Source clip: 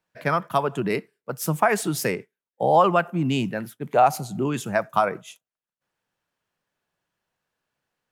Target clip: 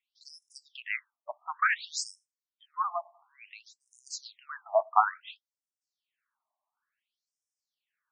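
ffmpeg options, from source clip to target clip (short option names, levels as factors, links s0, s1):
-filter_complex "[0:a]asettb=1/sr,asplit=3[s0][s1][s2];[s0]atrim=end=2.714[s3];[s1]atrim=start=2.71:end=3.47,asetpts=PTS-STARTPTS,afade=t=in:d=0.004:c=qsin,afade=t=out:st=0.756:d=0.004:c=qsin,equalizer=f=440:w=0.34:g=-13.5[s4];[s2]atrim=start=3.466[s5];[s3][s4]acrossfade=d=0.004:c1=hsin:c2=qsin[s6];[s6][s5]acrossfade=d=0.004:c1=qsin:c2=hsin,afftfilt=real='re*between(b*sr/1024,820*pow(7300/820,0.5+0.5*sin(2*PI*0.57*pts/sr))/1.41,820*pow(7300/820,0.5+0.5*sin(2*PI*0.57*pts/sr))*1.41)':imag='im*between(b*sr/1024,820*pow(7300/820,0.5+0.5*sin(2*PI*0.57*pts/sr))/1.41,820*pow(7300/820,0.5+0.5*sin(2*PI*0.57*pts/sr))*1.41)':win_size=1024:overlap=0.75"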